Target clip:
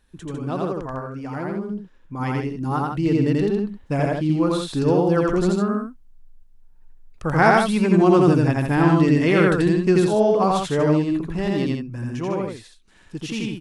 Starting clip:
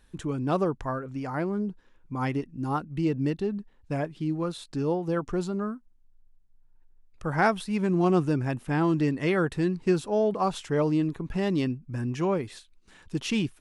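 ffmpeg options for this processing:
ffmpeg -i in.wav -af "dynaudnorm=framelen=280:gausssize=21:maxgain=11dB,aecho=1:1:84.55|151.6:0.891|0.501,volume=-2.5dB" out.wav

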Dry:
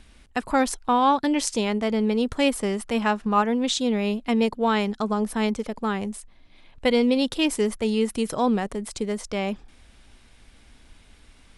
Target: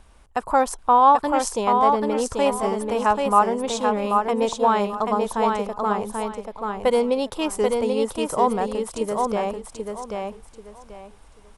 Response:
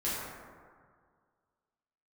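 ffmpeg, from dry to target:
-af "equalizer=frequency=250:width_type=o:width=1:gain=-7,equalizer=frequency=500:width_type=o:width=1:gain=3,equalizer=frequency=1000:width_type=o:width=1:gain=8,equalizer=frequency=2000:width_type=o:width=1:gain=-6,equalizer=frequency=4000:width_type=o:width=1:gain=-6,aecho=1:1:786|1572|2358:0.631|0.158|0.0394"

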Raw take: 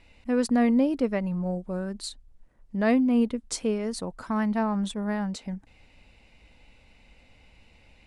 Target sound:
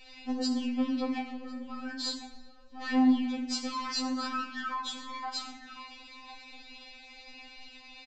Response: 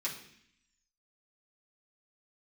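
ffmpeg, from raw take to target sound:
-filter_complex "[0:a]asettb=1/sr,asplit=3[link_01][link_02][link_03];[link_01]atrim=end=0.554[link_04];[link_02]atrim=start=0.55:end=1.08,asetpts=PTS-STARTPTS,afade=type=in:duration=0.004:curve=qsin,afade=type=out:start_time=0.526:duration=0.004:curve=qsin,acrossover=split=3500[link_05][link_06];[link_06]acompressor=threshold=-54dB:ratio=4:attack=1:release=60[link_07];[link_05][link_07]amix=inputs=2:normalize=0[link_08];[link_03]atrim=start=1.076[link_09];[link_04][link_08]acrossfade=duration=0.004:curve1=hsin:curve2=qsin[link_10];[link_10][link_09]acrossfade=duration=0.004:curve1=qsin:curve2=hsin,equalizer=frequency=5200:width_type=o:width=2.1:gain=11.5,acompressor=threshold=-35dB:ratio=2.5,asoftclip=type=hard:threshold=-32dB,asettb=1/sr,asplit=3[link_11][link_12][link_13];[link_11]atrim=end=3.304[link_14];[link_12]atrim=start=3.3:end=4,asetpts=PTS-STARTPTS,afade=type=in:duration=0.004:curve=qsin,afade=type=out:start_time=0.696:duration=0.004:curve=qsin,acrusher=bits=5:mix=0:aa=0.5[link_15];[link_13]atrim=start=3.996[link_16];[link_14][link_15]acrossfade=duration=0.004:curve1=hsin:curve2=qsin[link_17];[link_17][link_16]acrossfade=duration=0.004:curve1=qsin:curve2=hsin,asplit=2[link_18][link_19];[link_19]adelay=1050,volume=-11dB,highshelf=frequency=4000:gain=-23.6[link_20];[link_18][link_20]amix=inputs=2:normalize=0[link_21];[1:a]atrim=start_sample=2205,asetrate=29547,aresample=44100[link_22];[link_21][link_22]afir=irnorm=-1:irlink=0,aresample=16000,aresample=44100,afftfilt=real='re*3.46*eq(mod(b,12),0)':imag='im*3.46*eq(mod(b,12),0)':win_size=2048:overlap=0.75"

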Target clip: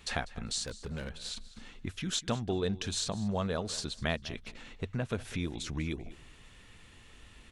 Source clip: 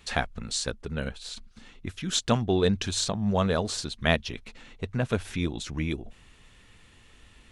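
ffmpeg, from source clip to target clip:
ffmpeg -i in.wav -filter_complex "[0:a]acompressor=threshold=-35dB:ratio=2,asplit=3[link_01][link_02][link_03];[link_01]afade=type=out:start_time=0.63:duration=0.02[link_04];[link_02]asoftclip=type=hard:threshold=-34.5dB,afade=type=in:start_time=0.63:duration=0.02,afade=type=out:start_time=1.14:duration=0.02[link_05];[link_03]afade=type=in:start_time=1.14:duration=0.02[link_06];[link_04][link_05][link_06]amix=inputs=3:normalize=0,asplit=2[link_07][link_08];[link_08]aecho=0:1:197|394:0.126|0.0214[link_09];[link_07][link_09]amix=inputs=2:normalize=0" out.wav

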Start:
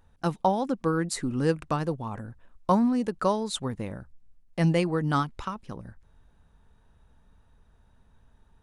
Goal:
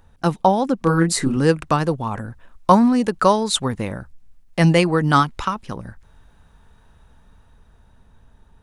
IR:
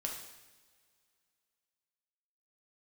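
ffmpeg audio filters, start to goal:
-filter_complex "[0:a]acrossover=split=790[link_01][link_02];[link_02]dynaudnorm=framelen=280:gausssize=11:maxgain=4dB[link_03];[link_01][link_03]amix=inputs=2:normalize=0,asettb=1/sr,asplit=3[link_04][link_05][link_06];[link_04]atrim=end=0.794[link_07];[link_05]atrim=start=0.79:end=1.37,asetpts=PTS-STARTPTS,afade=type=in:duration=0.004:curve=qsin,afade=type=out:start_time=0.576:duration=0.004:curve=qsin,asplit=2[link_08][link_09];[link_09]adelay=30,volume=-3dB[link_10];[link_08][link_10]amix=inputs=2:normalize=0,atrim=end_sample=25578[link_11];[link_06]atrim=start=1.366[link_12];[link_07][link_11]acrossfade=duration=0.004:curve1=hsin:curve2=qsin[link_13];[link_13][link_12]acrossfade=duration=0.004:curve1=qsin:curve2=hsin,volume=8dB"

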